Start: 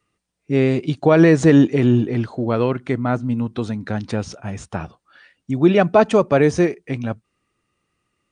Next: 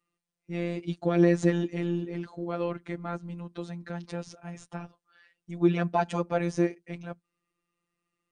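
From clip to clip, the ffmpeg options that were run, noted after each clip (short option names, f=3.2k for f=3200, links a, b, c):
-af "afftfilt=real='hypot(re,im)*cos(PI*b)':imag='0':win_size=1024:overlap=0.75,volume=-8dB"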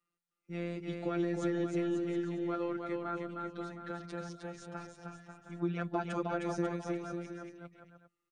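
-filter_complex "[0:a]equalizer=f=1.4k:w=5.8:g=9.5,acrossover=split=150[a][b];[b]acompressor=threshold=-25dB:ratio=6[c];[a][c]amix=inputs=2:normalize=0,asplit=2[d][e];[e]aecho=0:1:310|542.5|716.9|847.7|945.7:0.631|0.398|0.251|0.158|0.1[f];[d][f]amix=inputs=2:normalize=0,volume=-6.5dB"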